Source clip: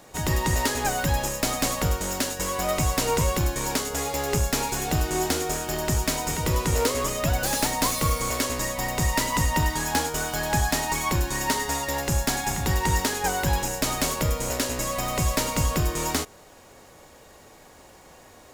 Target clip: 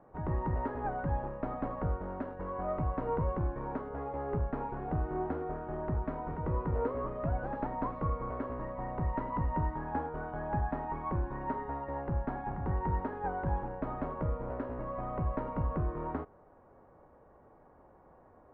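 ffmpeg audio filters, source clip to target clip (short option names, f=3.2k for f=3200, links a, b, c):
-af "lowpass=f=1.3k:w=0.5412,lowpass=f=1.3k:w=1.3066,volume=-8dB"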